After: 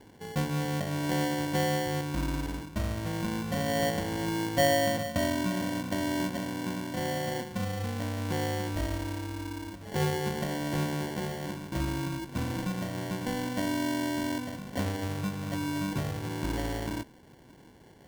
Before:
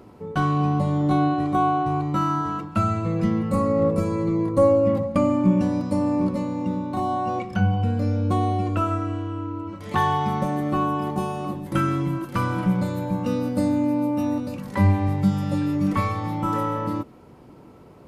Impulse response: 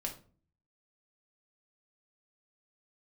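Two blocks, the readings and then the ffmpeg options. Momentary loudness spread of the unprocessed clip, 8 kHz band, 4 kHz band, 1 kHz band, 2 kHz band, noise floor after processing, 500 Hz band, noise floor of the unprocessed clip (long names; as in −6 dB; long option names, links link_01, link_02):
7 LU, can't be measured, +5.0 dB, −10.5 dB, 0.0 dB, −54 dBFS, −7.5 dB, −47 dBFS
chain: -filter_complex "[0:a]acrossover=split=310[link_01][link_02];[link_01]acompressor=threshold=-25dB:ratio=6[link_03];[link_03][link_02]amix=inputs=2:normalize=0,acrusher=samples=35:mix=1:aa=0.000001,volume=-7dB"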